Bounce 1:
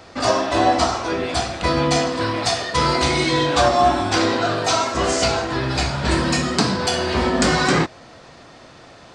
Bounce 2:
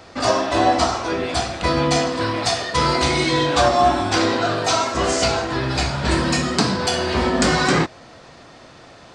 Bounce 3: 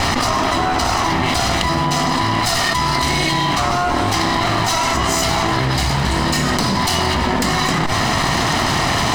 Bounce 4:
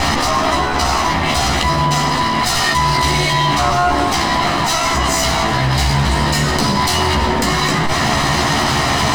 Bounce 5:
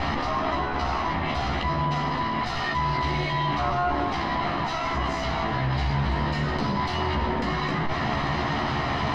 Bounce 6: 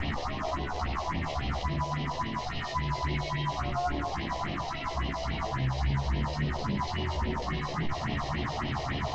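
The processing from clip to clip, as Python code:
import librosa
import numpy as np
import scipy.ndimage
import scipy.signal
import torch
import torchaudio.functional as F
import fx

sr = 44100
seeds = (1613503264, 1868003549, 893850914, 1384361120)

y1 = x
y2 = fx.lower_of_two(y1, sr, delay_ms=1.0)
y2 = fx.env_flatten(y2, sr, amount_pct=100)
y2 = y2 * librosa.db_to_amplitude(-2.5)
y3 = fx.doubler(y2, sr, ms=14.0, db=-3.0)
y4 = fx.air_absorb(y3, sr, metres=260.0)
y4 = y4 * librosa.db_to_amplitude(-9.0)
y5 = fx.cvsd(y4, sr, bps=32000)
y5 = fx.phaser_stages(y5, sr, stages=4, low_hz=220.0, high_hz=1400.0, hz=3.6, feedback_pct=30)
y5 = y5 * librosa.db_to_amplitude(-3.0)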